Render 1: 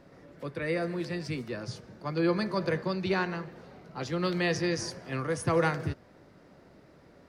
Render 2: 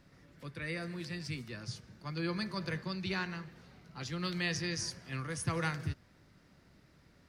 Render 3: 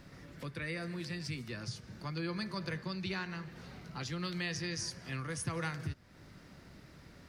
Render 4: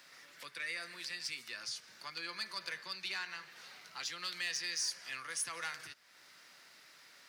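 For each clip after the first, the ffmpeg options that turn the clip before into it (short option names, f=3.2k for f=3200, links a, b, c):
-af "equalizer=f=530:t=o:w=2.5:g=-14"
-af "acompressor=threshold=-51dB:ratio=2,volume=8dB"
-filter_complex "[0:a]asplit=2[a][b];[b]highpass=f=720:p=1,volume=11dB,asoftclip=type=tanh:threshold=-23dB[c];[a][c]amix=inputs=2:normalize=0,lowpass=f=2k:p=1,volume=-6dB,aderivative,volume=10dB"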